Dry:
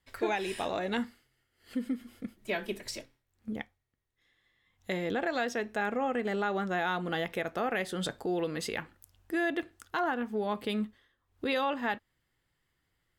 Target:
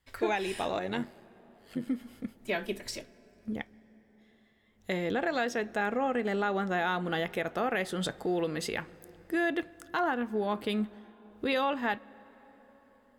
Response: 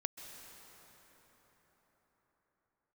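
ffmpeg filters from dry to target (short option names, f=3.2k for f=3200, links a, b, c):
-filter_complex "[0:a]asettb=1/sr,asplit=3[a][b][c];[a]atrim=end=0.794[d];[b]atrim=start=0.79:end=1.88,asetpts=PTS-STARTPTS,afade=t=in:d=0.004:c=qsin,afade=t=out:st=1.086:d=0.004:c=qsin,tremolo=f=93:d=0.667[e];[c]atrim=start=1.876[f];[d][e]acrossfade=d=0.004:c1=hsin:c2=qsin[g];[g][f]acrossfade=d=0.004:c1=qsin:c2=hsin,asplit=2[h][i];[i]lowshelf=f=130:g=10[j];[1:a]atrim=start_sample=2205,highshelf=f=3.9k:g=-8.5[k];[j][k]afir=irnorm=-1:irlink=0,volume=-14.5dB[l];[h][l]amix=inputs=2:normalize=0"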